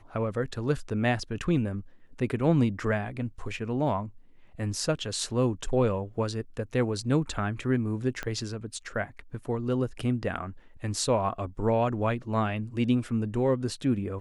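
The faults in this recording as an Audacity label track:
8.230000	8.230000	click −18 dBFS

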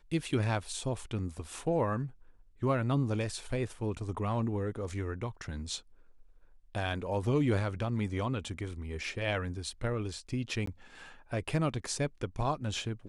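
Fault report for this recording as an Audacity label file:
10.660000	10.670000	drop-out 14 ms

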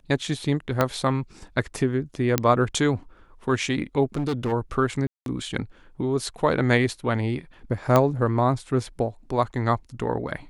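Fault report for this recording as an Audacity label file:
0.810000	0.810000	click −7 dBFS
2.380000	2.380000	click −5 dBFS
4.140000	4.530000	clipping −21.5 dBFS
5.070000	5.260000	drop-out 192 ms
7.960000	7.960000	click −6 dBFS

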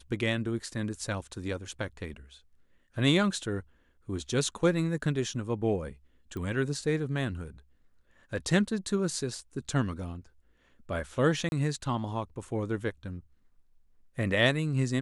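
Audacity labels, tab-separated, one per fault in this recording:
6.370000	6.370000	click −26 dBFS
11.490000	11.520000	drop-out 31 ms

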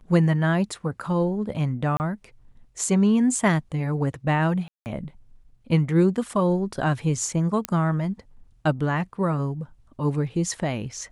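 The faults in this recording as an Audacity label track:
1.970000	2.000000	drop-out 29 ms
4.680000	4.860000	drop-out 179 ms
7.650000	7.650000	click −9 dBFS

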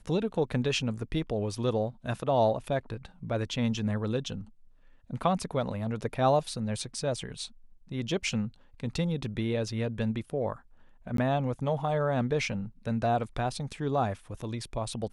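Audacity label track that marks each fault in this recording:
11.170000	11.180000	drop-out 13 ms

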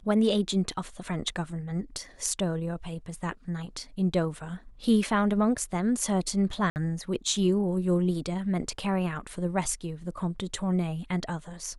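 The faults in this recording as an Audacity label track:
6.700000	6.760000	drop-out 59 ms

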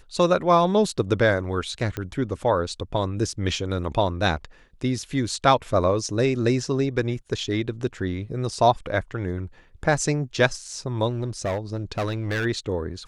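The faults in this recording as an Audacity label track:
1.970000	1.970000	click −15 dBFS
11.090000	12.460000	clipping −21.5 dBFS

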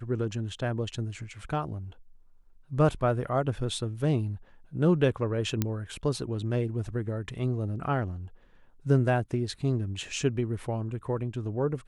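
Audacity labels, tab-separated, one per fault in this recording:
5.620000	5.620000	click −12 dBFS

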